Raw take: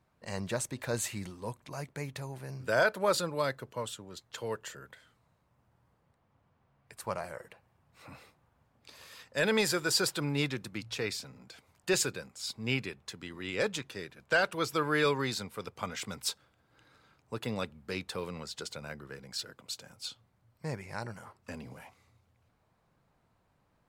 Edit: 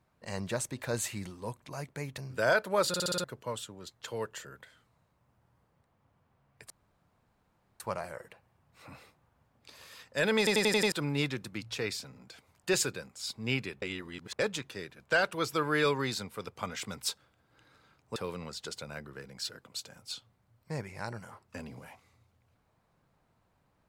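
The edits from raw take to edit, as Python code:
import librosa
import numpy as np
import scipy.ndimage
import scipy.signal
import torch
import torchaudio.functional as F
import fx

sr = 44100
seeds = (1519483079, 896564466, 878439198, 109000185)

y = fx.edit(x, sr, fx.cut(start_s=2.18, length_s=0.3),
    fx.stutter_over(start_s=3.18, slice_s=0.06, count=6),
    fx.insert_room_tone(at_s=7.0, length_s=1.1),
    fx.stutter_over(start_s=9.58, slice_s=0.09, count=6),
    fx.reverse_span(start_s=13.02, length_s=0.57),
    fx.cut(start_s=17.36, length_s=0.74), tone=tone)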